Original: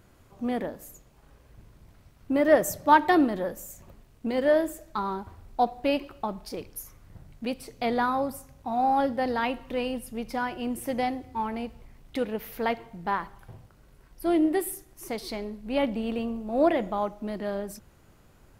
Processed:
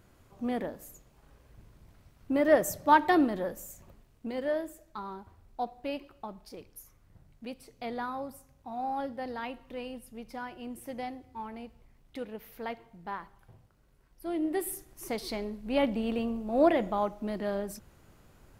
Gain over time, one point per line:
3.68 s -3 dB
4.66 s -10 dB
14.33 s -10 dB
14.75 s -1 dB

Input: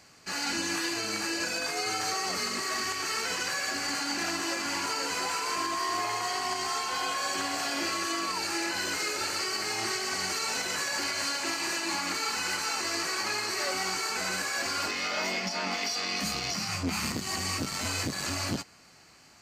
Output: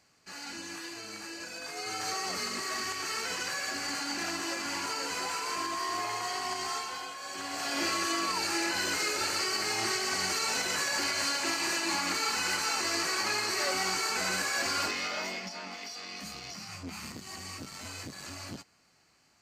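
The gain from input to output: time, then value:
1.51 s -10.5 dB
2.1 s -3 dB
6.75 s -3 dB
7.17 s -11.5 dB
7.82 s +0.5 dB
14.81 s +0.5 dB
15.7 s -10.5 dB

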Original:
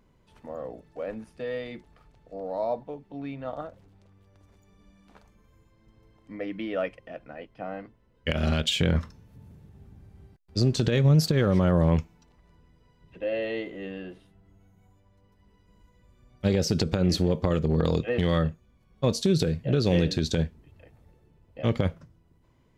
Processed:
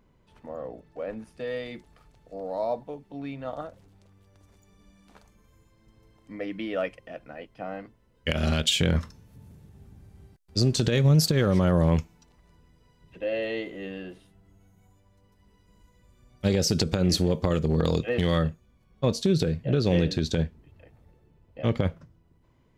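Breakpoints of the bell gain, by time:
bell 10000 Hz 2 oct
1.06 s -3.5 dB
1.5 s +7 dB
18.3 s +7 dB
19.16 s -3 dB

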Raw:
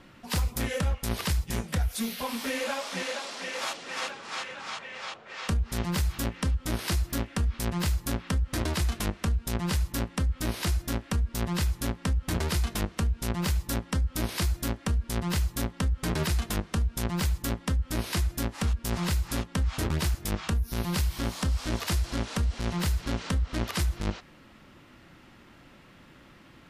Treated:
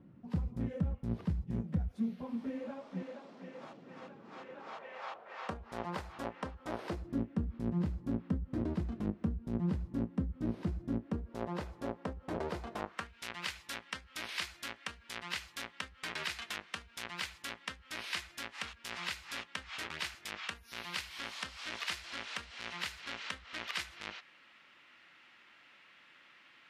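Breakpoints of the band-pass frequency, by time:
band-pass, Q 1.2
4.13 s 170 Hz
5.01 s 760 Hz
6.72 s 760 Hz
7.19 s 230 Hz
10.99 s 230 Hz
11.41 s 570 Hz
12.7 s 570 Hz
13.13 s 2400 Hz

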